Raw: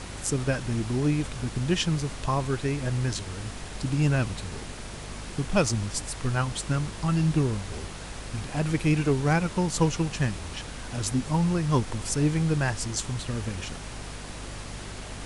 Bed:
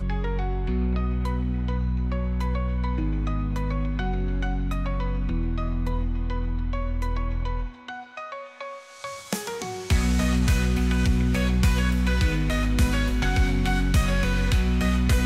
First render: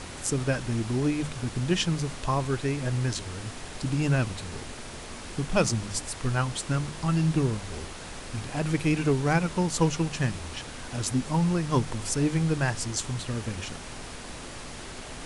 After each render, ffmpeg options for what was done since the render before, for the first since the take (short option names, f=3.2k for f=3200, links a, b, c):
-af "bandreject=f=50:t=h:w=6,bandreject=f=100:t=h:w=6,bandreject=f=150:t=h:w=6,bandreject=f=200:t=h:w=6"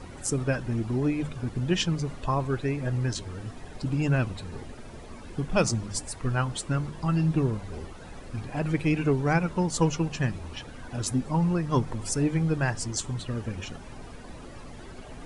-af "afftdn=nr=13:nf=-40"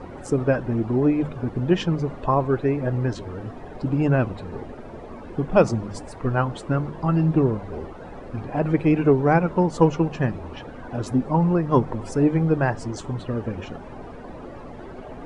-af "lowpass=f=1.9k:p=1,equalizer=f=560:w=0.38:g=9.5"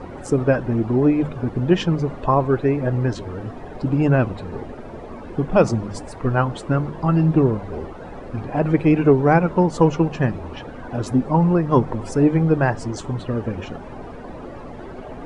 -af "volume=3dB,alimiter=limit=-3dB:level=0:latency=1"